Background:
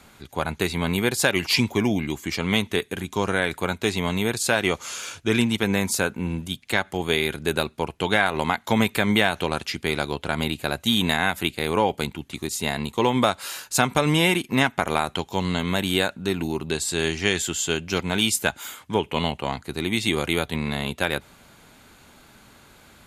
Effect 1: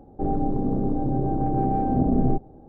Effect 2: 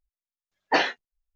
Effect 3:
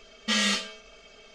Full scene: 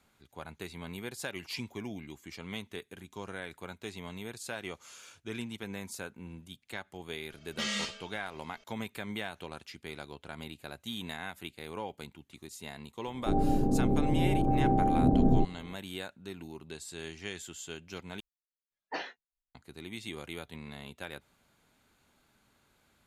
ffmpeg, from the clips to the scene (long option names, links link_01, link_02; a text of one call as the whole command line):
ffmpeg -i bed.wav -i cue0.wav -i cue1.wav -i cue2.wav -filter_complex "[0:a]volume=-18dB,asplit=2[link_01][link_02];[link_01]atrim=end=18.204[link_03];[2:a]atrim=end=1.35,asetpts=PTS-STARTPTS,volume=-16dB[link_04];[link_02]atrim=start=19.546[link_05];[3:a]atrim=end=1.34,asetpts=PTS-STARTPTS,volume=-9dB,afade=type=in:duration=0.004:curve=hsin,afade=type=out:start_time=1.336:duration=0.004:curve=hsin,adelay=321930S[link_06];[1:a]atrim=end=2.68,asetpts=PTS-STARTPTS,volume=-3dB,afade=type=in:duration=0.004:curve=hsin,afade=type=out:start_time=2.676:duration=0.004:curve=hsin,adelay=13070[link_07];[link_03][link_04]acrossfade=duration=0.004:curve1=hsin:curve2=hsin[link_08];[link_08][link_05]acrossfade=duration=0.004:curve1=hsin:curve2=hsin[link_09];[link_09][link_06][link_07]amix=inputs=3:normalize=0" out.wav